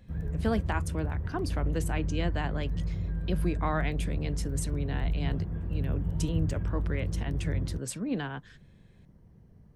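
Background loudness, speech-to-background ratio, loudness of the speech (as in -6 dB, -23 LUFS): -33.5 LUFS, -1.5 dB, -35.0 LUFS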